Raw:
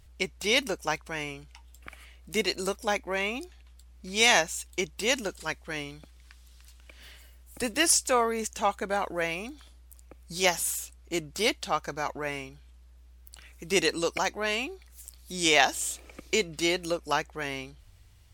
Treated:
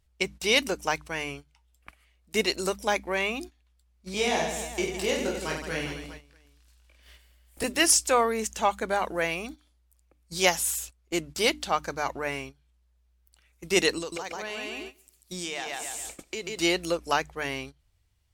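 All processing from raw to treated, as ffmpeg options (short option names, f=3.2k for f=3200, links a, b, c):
-filter_complex "[0:a]asettb=1/sr,asplit=3[a][b][c];[a]atrim=end=4.144[d];[b]atrim=start=4.14:end=7.64,asetpts=PTS-STARTPTS,afade=t=in:d=0.004:c=qsin,afade=t=out:st=3.496:d=0.004:c=qsin,acrossover=split=690|1800[e][f][g];[e]acompressor=threshold=-30dB:ratio=4[h];[f]acompressor=threshold=-44dB:ratio=4[i];[g]acompressor=threshold=-39dB:ratio=4[j];[h][i][j]amix=inputs=3:normalize=0,aecho=1:1:20|50|95|162.5|263.8|415.6|643.4:0.794|0.631|0.501|0.398|0.316|0.251|0.2,atrim=end_sample=154350[k];[c]atrim=start=7.636[l];[d][k]acrossfade=d=0.004:c1=hsin:c2=qsin[m];[m][l]acrossfade=d=0.004:c1=qsin:c2=hsin,asettb=1/sr,asplit=3[n][o][p];[n]atrim=end=13.984[q];[o]atrim=start=13.98:end=16.6,asetpts=PTS-STARTPTS,afade=t=in:d=0.004:c=qsin,afade=t=out:st=2.616:d=0.004:c=qsin,aecho=1:1:140|280|420|560:0.631|0.164|0.0427|0.0111,atrim=end_sample=115542,acompressor=threshold=-33dB:ratio=6:attack=3.2:release=140:knee=1:detection=peak[r];[p]atrim=start=16.596[s];[q][r]acrossfade=d=0.004:c1=hsin:c2=qsin[t];[t][s]acrossfade=d=0.004:c1=qsin:c2=hsin,bandreject=f=50:t=h:w=6,bandreject=f=100:t=h:w=6,bandreject=f=150:t=h:w=6,bandreject=f=200:t=h:w=6,bandreject=f=250:t=h:w=6,bandreject=f=300:t=h:w=6,agate=range=-15dB:threshold=-42dB:ratio=16:detection=peak,volume=2dB"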